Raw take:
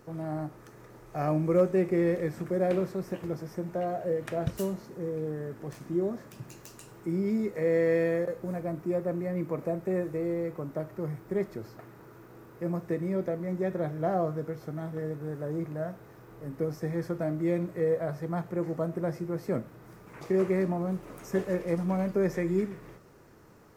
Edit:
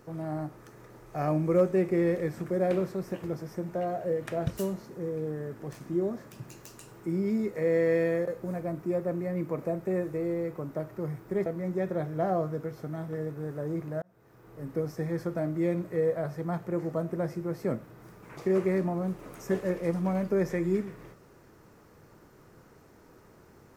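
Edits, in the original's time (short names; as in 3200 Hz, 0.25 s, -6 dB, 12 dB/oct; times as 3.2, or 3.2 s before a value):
11.46–13.3 cut
15.86–16.5 fade in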